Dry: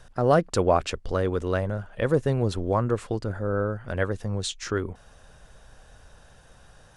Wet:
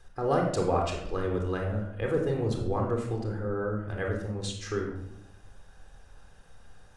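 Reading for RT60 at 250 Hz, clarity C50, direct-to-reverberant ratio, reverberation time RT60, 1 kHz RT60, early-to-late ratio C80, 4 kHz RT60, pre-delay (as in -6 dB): 1.2 s, 4.5 dB, 0.5 dB, 0.80 s, 0.70 s, 7.5 dB, 0.50 s, 3 ms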